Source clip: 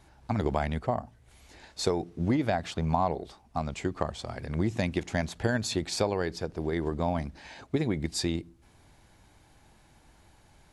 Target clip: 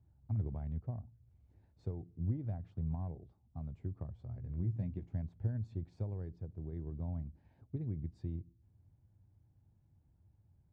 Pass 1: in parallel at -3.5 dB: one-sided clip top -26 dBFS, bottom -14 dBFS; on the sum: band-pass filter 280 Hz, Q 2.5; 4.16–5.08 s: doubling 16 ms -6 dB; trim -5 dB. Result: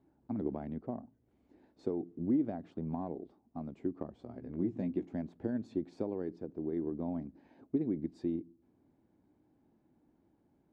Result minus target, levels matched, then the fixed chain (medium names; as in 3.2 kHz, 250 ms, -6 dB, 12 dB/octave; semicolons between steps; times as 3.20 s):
125 Hz band -11.5 dB
in parallel at -3.5 dB: one-sided clip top -26 dBFS, bottom -14 dBFS; on the sum: band-pass filter 100 Hz, Q 2.5; 4.16–5.08 s: doubling 16 ms -6 dB; trim -5 dB